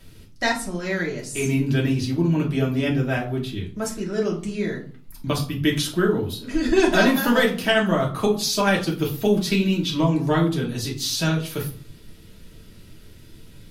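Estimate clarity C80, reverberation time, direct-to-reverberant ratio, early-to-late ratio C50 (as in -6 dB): 15.0 dB, 0.50 s, -2.5 dB, 10.0 dB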